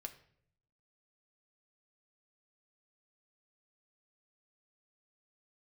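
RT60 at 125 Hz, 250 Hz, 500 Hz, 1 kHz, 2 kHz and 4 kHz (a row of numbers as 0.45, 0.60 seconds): 1.1, 0.90, 0.75, 0.55, 0.55, 0.50 seconds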